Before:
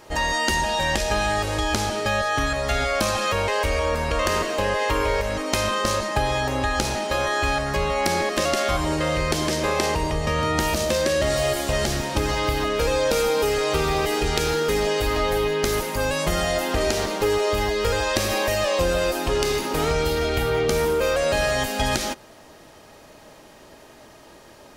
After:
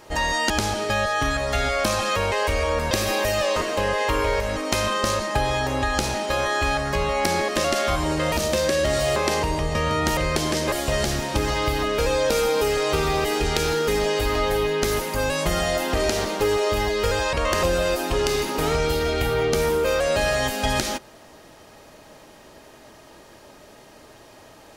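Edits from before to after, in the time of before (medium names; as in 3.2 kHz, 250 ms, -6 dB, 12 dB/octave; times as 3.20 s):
0.50–1.66 s: delete
4.07–4.37 s: swap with 18.14–18.79 s
9.13–9.68 s: swap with 10.69–11.53 s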